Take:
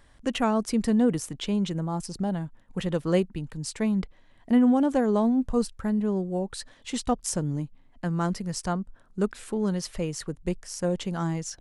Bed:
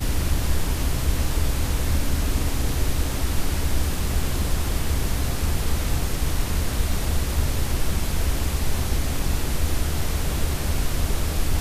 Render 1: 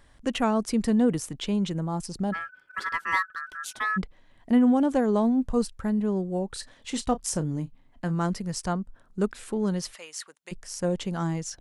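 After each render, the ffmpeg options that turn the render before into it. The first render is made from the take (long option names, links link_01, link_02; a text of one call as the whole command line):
ffmpeg -i in.wav -filter_complex "[0:a]asplit=3[link_01][link_02][link_03];[link_01]afade=type=out:start_time=2.32:duration=0.02[link_04];[link_02]aeval=exprs='val(0)*sin(2*PI*1500*n/s)':channel_layout=same,afade=type=in:start_time=2.32:duration=0.02,afade=type=out:start_time=3.96:duration=0.02[link_05];[link_03]afade=type=in:start_time=3.96:duration=0.02[link_06];[link_04][link_05][link_06]amix=inputs=3:normalize=0,asettb=1/sr,asplit=3[link_07][link_08][link_09];[link_07]atrim=end=6.484[link_10];[link_08]atrim=start=6.48:end=8.15,asetpts=PTS-STARTPTS,afade=type=in:duration=0.004:curve=qsin,afade=type=out:start_time=1.666:duration=0.004:curve=qsin,asplit=2[link_11][link_12];[link_12]adelay=31,volume=-14dB[link_13];[link_11][link_13]amix=inputs=2:normalize=0,atrim=end_sample=73647[link_14];[link_09]atrim=start=8.146[link_15];[link_10][link_14]acrossfade=duration=0.004:curve1=hsin:curve2=qsin[link_16];[link_16][link_15]acrossfade=duration=0.004:curve1=qsin:curve2=hsin,asplit=3[link_17][link_18][link_19];[link_17]afade=type=out:start_time=9.93:duration=0.02[link_20];[link_18]highpass=1200,afade=type=in:start_time=9.93:duration=0.02,afade=type=out:start_time=10.51:duration=0.02[link_21];[link_19]afade=type=in:start_time=10.51:duration=0.02[link_22];[link_20][link_21][link_22]amix=inputs=3:normalize=0" out.wav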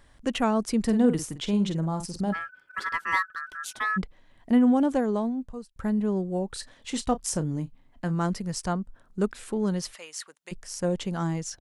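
ffmpeg -i in.wav -filter_complex "[0:a]asplit=3[link_01][link_02][link_03];[link_01]afade=type=out:start_time=0.86:duration=0.02[link_04];[link_02]asplit=2[link_05][link_06];[link_06]adelay=49,volume=-9dB[link_07];[link_05][link_07]amix=inputs=2:normalize=0,afade=type=in:start_time=0.86:duration=0.02,afade=type=out:start_time=2.32:duration=0.02[link_08];[link_03]afade=type=in:start_time=2.32:duration=0.02[link_09];[link_04][link_08][link_09]amix=inputs=3:normalize=0,asplit=2[link_10][link_11];[link_10]atrim=end=5.76,asetpts=PTS-STARTPTS,afade=type=out:start_time=4.85:duration=0.91[link_12];[link_11]atrim=start=5.76,asetpts=PTS-STARTPTS,afade=type=in:duration=0.004:curve=hsin[link_13];[link_12][link_13]concat=n=2:v=0:a=1" out.wav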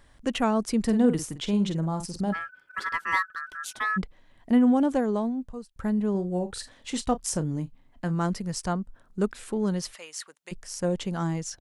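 ffmpeg -i in.wav -filter_complex "[0:a]asettb=1/sr,asplit=3[link_01][link_02][link_03];[link_01]atrim=end=6.104[link_04];[link_02]atrim=start=6.1:end=6.91,asetpts=PTS-STARTPTS,afade=type=in:duration=0.004:curve=qsin,afade=type=out:start_time=0.806:duration=0.004:curve=qsin,asplit=2[link_05][link_06];[link_06]adelay=45,volume=-11dB[link_07];[link_05][link_07]amix=inputs=2:normalize=0,atrim=end_sample=35721[link_08];[link_03]atrim=start=6.906[link_09];[link_04][link_08]acrossfade=duration=0.004:curve1=hsin:curve2=qsin[link_10];[link_10][link_09]acrossfade=duration=0.004:curve1=qsin:curve2=hsin" out.wav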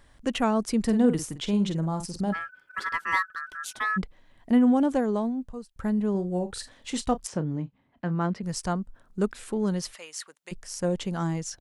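ffmpeg -i in.wav -filter_complex "[0:a]asettb=1/sr,asplit=3[link_01][link_02][link_03];[link_01]atrim=end=7.274[link_04];[link_02]atrim=start=7.27:end=8.43,asetpts=PTS-STARTPTS,afade=type=in:duration=0.004:curve=qsin,afade=type=out:start_time=1.156:duration=0.004:curve=qsin,highpass=100,lowpass=3100[link_05];[link_03]atrim=start=8.426[link_06];[link_04][link_05]acrossfade=duration=0.004:curve1=hsin:curve2=qsin[link_07];[link_07][link_06]acrossfade=duration=0.004:curve1=qsin:curve2=hsin" out.wav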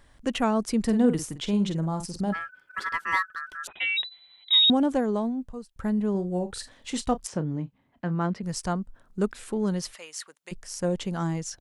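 ffmpeg -i in.wav -filter_complex "[0:a]asettb=1/sr,asplit=3[link_01][link_02][link_03];[link_01]atrim=end=3.674[link_04];[link_02]atrim=start=3.67:end=4.7,asetpts=PTS-STARTPTS,afade=type=in:duration=0.004:curve=qsin,afade=type=out:start_time=1.026:duration=0.004:curve=qsin,lowpass=frequency=3400:width_type=q:width=0.5098,lowpass=frequency=3400:width_type=q:width=0.6013,lowpass=frequency=3400:width_type=q:width=0.9,lowpass=frequency=3400:width_type=q:width=2.563,afreqshift=-4000[link_05];[link_03]atrim=start=4.696[link_06];[link_04][link_05]acrossfade=duration=0.004:curve1=hsin:curve2=qsin[link_07];[link_07][link_06]acrossfade=duration=0.004:curve1=qsin:curve2=hsin" out.wav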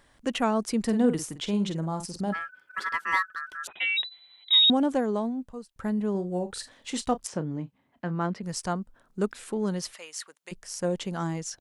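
ffmpeg -i in.wav -af "lowshelf=frequency=110:gain=-10.5" out.wav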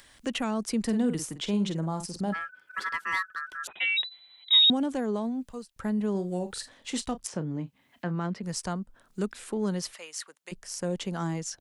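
ffmpeg -i in.wav -filter_complex "[0:a]acrossover=split=230|1900[link_01][link_02][link_03];[link_02]alimiter=level_in=0.5dB:limit=-24dB:level=0:latency=1:release=158,volume=-0.5dB[link_04];[link_03]acompressor=mode=upward:threshold=-48dB:ratio=2.5[link_05];[link_01][link_04][link_05]amix=inputs=3:normalize=0" out.wav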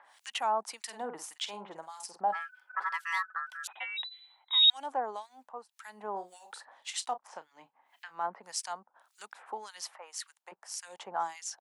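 ffmpeg -i in.wav -filter_complex "[0:a]highpass=frequency=830:width_type=q:width=3.9,acrossover=split=1700[link_01][link_02];[link_01]aeval=exprs='val(0)*(1-1/2+1/2*cos(2*PI*1.8*n/s))':channel_layout=same[link_03];[link_02]aeval=exprs='val(0)*(1-1/2-1/2*cos(2*PI*1.8*n/s))':channel_layout=same[link_04];[link_03][link_04]amix=inputs=2:normalize=0" out.wav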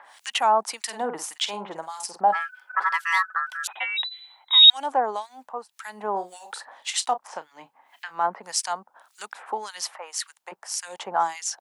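ffmpeg -i in.wav -af "volume=10dB" out.wav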